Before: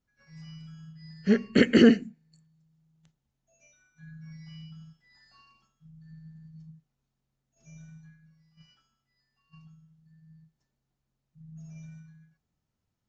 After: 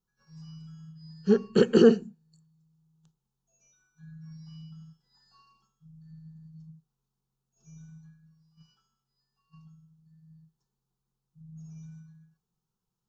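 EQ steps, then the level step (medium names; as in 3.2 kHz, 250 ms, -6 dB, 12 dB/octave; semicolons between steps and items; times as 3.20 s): dynamic bell 680 Hz, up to +7 dB, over -36 dBFS, Q 0.72; static phaser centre 410 Hz, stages 8; 0.0 dB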